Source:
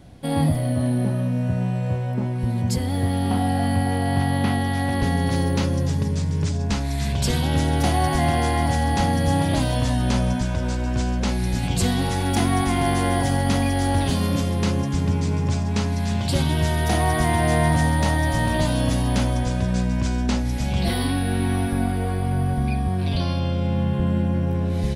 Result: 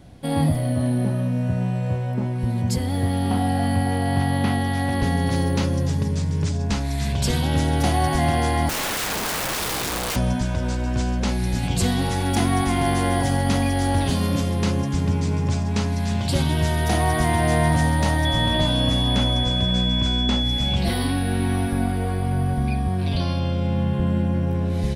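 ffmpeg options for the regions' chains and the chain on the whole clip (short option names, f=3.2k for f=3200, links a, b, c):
-filter_complex "[0:a]asettb=1/sr,asplit=3[a][b][c];[a]atrim=end=8.694[d];[b]atrim=start=8.69:end=10.16,asetpts=PTS-STARTPTS,afade=t=in:d=0.004:c=qsin,afade=t=out:st=1.466:d=0.004:c=qsin,bandreject=f=50:t=h:w=6,bandreject=f=100:t=h:w=6,bandreject=f=150:t=h:w=6,bandreject=f=200:t=h:w=6,bandreject=f=250:t=h:w=6,aeval=exprs='(mod(11.2*val(0)+1,2)-1)/11.2':c=same[e];[c]atrim=start=10.156[f];[d][e]acrossfade=d=0.004:c1=hsin:c2=qsin[g];[g][f]acrossfade=d=0.004:c1=qsin:c2=hsin,asettb=1/sr,asplit=3[h][i][j];[h]atrim=end=18.254[k];[i]atrim=start=18.25:end=20.76,asetpts=PTS-STARTPTS,afade=t=in:d=0.004:c=qsin,afade=t=out:st=2.506:d=0.004:c=qsin,aeval=exprs='val(0)+0.0794*sin(2*PI*3400*n/s)':c=same,acrossover=split=3200[l][m];[m]acompressor=threshold=-31dB:ratio=4:attack=1:release=60[n];[l][n]amix=inputs=2:normalize=0[o];[j]atrim=start=20.756[p];[k][o]acrossfade=d=0.004:c1=hsin:c2=qsin[q];[q][p]acrossfade=d=0.004:c1=qsin:c2=hsin"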